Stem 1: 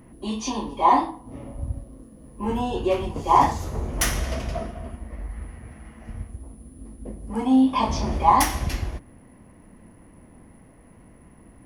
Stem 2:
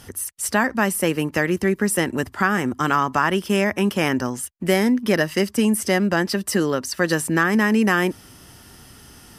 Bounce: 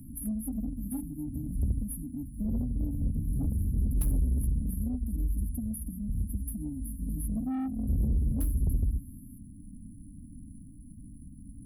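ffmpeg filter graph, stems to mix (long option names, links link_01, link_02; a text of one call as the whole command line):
ffmpeg -i stem1.wav -i stem2.wav -filter_complex "[0:a]lowshelf=frequency=63:gain=6,volume=2dB[link_01];[1:a]aecho=1:1:2.7:0.62,volume=-7.5dB[link_02];[link_01][link_02]amix=inputs=2:normalize=0,afftfilt=real='re*(1-between(b*sr/4096,310,10000))':imag='im*(1-between(b*sr/4096,310,10000))':win_size=4096:overlap=0.75,asoftclip=type=tanh:threshold=-21dB,acrossover=split=170[link_03][link_04];[link_04]acompressor=threshold=-38dB:ratio=3[link_05];[link_03][link_05]amix=inputs=2:normalize=0" out.wav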